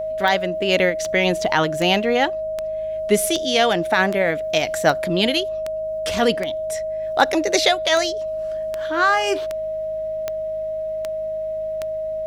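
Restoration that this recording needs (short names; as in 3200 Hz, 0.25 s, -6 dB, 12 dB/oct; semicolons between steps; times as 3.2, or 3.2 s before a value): de-click; de-hum 52.3 Hz, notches 4; notch 630 Hz, Q 30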